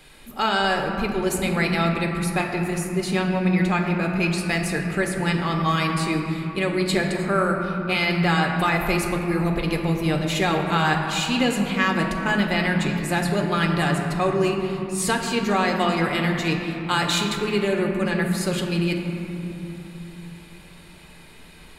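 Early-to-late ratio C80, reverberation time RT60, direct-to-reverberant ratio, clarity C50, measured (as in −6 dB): 4.5 dB, 2.9 s, 1.0 dB, 3.5 dB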